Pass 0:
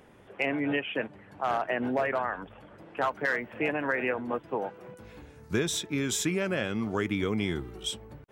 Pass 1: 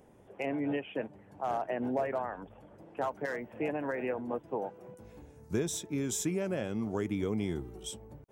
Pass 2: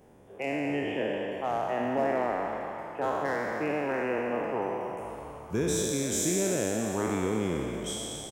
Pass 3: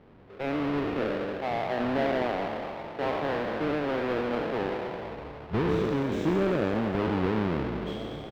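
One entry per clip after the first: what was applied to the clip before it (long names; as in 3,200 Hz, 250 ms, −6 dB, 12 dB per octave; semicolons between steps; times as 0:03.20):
flat-topped bell 2,300 Hz −8.5 dB 2.3 octaves; level −3 dB
peak hold with a decay on every bin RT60 2.67 s; on a send: echo with shifted repeats 232 ms, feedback 61%, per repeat +86 Hz, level −11.5 dB
each half-wave held at its own peak; high-frequency loss of the air 350 metres; level −1.5 dB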